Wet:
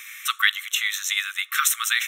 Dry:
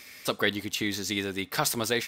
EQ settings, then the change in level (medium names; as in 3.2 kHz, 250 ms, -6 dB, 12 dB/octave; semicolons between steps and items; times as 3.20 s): brick-wall FIR high-pass 1.1 kHz; Butterworth band-stop 4.7 kHz, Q 2.5; +9.0 dB